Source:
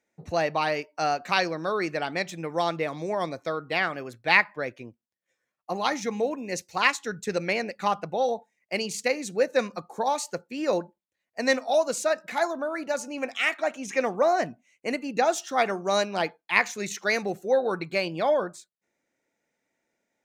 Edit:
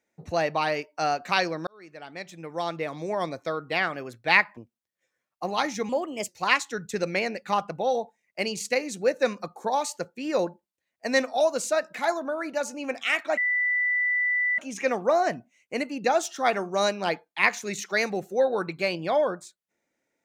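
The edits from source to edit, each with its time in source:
0:01.67–0:03.19: fade in
0:04.57–0:04.84: remove
0:06.16–0:06.62: play speed 117%
0:13.71: insert tone 1,980 Hz −21.5 dBFS 1.21 s

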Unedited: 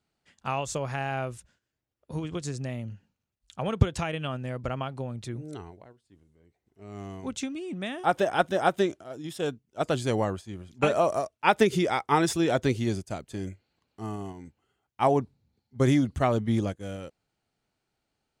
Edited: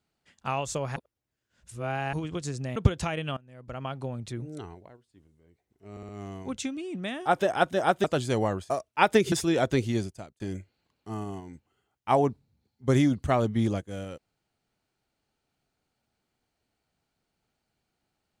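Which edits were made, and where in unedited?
0:00.96–0:02.13: reverse
0:02.76–0:03.72: remove
0:04.33–0:04.89: fade in quadratic, from −22 dB
0:06.87: stutter 0.06 s, 4 plays
0:08.82–0:09.81: remove
0:10.47–0:11.16: remove
0:11.78–0:12.24: remove
0:12.88–0:13.32: fade out linear

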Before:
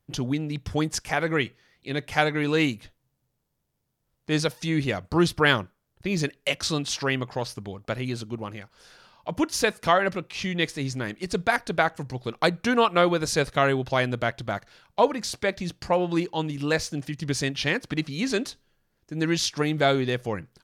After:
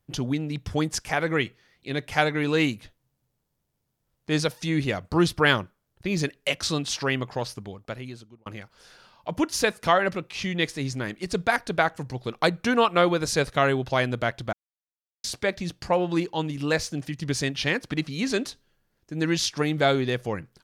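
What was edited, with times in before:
0:07.47–0:08.46: fade out
0:14.53–0:15.24: silence

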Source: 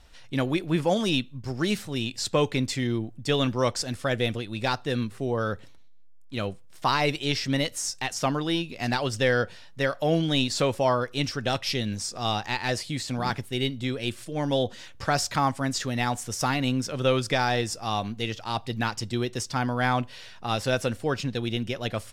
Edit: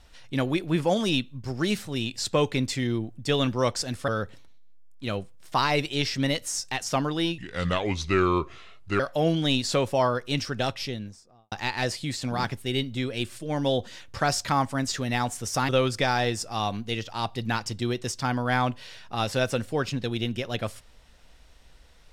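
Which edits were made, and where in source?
0:04.08–0:05.38: remove
0:08.68–0:09.86: play speed 73%
0:11.37–0:12.38: fade out and dull
0:16.55–0:17.00: remove

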